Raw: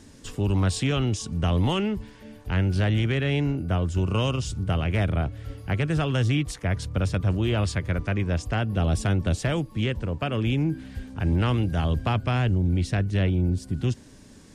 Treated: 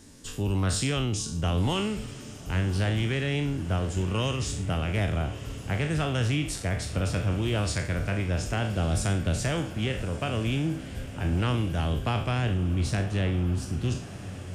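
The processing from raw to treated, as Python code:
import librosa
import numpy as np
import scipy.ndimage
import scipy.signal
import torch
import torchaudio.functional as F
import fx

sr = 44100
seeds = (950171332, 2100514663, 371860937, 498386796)

p1 = fx.spec_trails(x, sr, decay_s=0.47)
p2 = fx.high_shelf(p1, sr, hz=6300.0, db=8.0)
p3 = p2 + fx.echo_diffused(p2, sr, ms=1140, feedback_pct=59, wet_db=-14, dry=0)
y = F.gain(torch.from_numpy(p3), -4.0).numpy()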